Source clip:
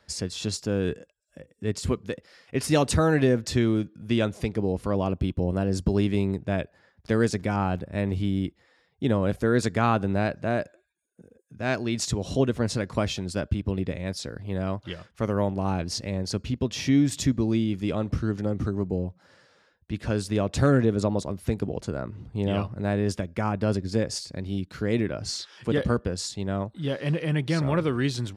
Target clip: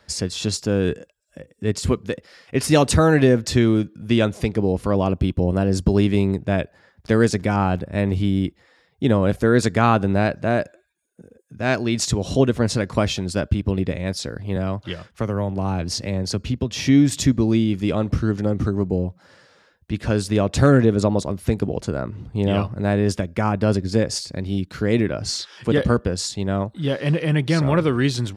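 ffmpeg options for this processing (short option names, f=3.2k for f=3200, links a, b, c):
-filter_complex "[0:a]asettb=1/sr,asplit=3[a][b][c];[a]atrim=end=14.564[d];[b]atrim=start=14.56:end=16.86,asetpts=PTS-STARTPTS,afade=t=in:d=0.004:c=qsin,afade=t=out:st=2.296:d=0.004:c=qsin,acrossover=split=130[e][f];[f]acompressor=threshold=-27dB:ratio=6[g];[e][g]amix=inputs=2:normalize=0[h];[c]atrim=start=16.856[i];[d][h]acrossfade=d=0.004:c1=hsin:c2=qsin[j];[j][i]acrossfade=d=0.004:c1=qsin:c2=hsin,volume=6dB"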